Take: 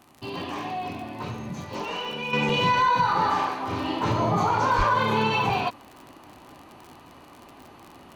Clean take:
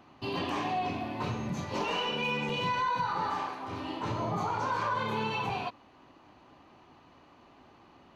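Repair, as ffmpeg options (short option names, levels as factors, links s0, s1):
-filter_complex "[0:a]adeclick=t=4,asplit=3[s0][s1][s2];[s0]afade=t=out:st=4.77:d=0.02[s3];[s1]highpass=f=140:w=0.5412,highpass=f=140:w=1.3066,afade=t=in:st=4.77:d=0.02,afade=t=out:st=4.89:d=0.02[s4];[s2]afade=t=in:st=4.89:d=0.02[s5];[s3][s4][s5]amix=inputs=3:normalize=0,agate=range=0.0891:threshold=0.00891,asetnsamples=n=441:p=0,asendcmd='2.33 volume volume -9dB',volume=1"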